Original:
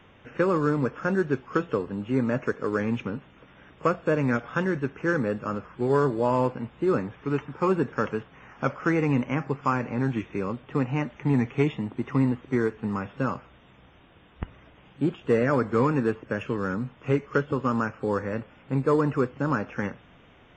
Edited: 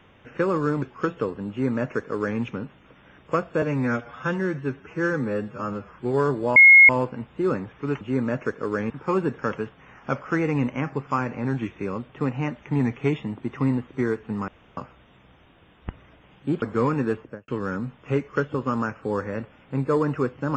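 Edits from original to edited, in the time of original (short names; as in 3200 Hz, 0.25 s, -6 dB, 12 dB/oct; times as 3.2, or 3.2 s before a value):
0.82–1.34 cut
2.02–2.91 copy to 7.44
4.14–5.66 stretch 1.5×
6.32 add tone 2160 Hz -7 dBFS 0.33 s
13.02–13.31 room tone
15.16–15.6 cut
16.15–16.46 studio fade out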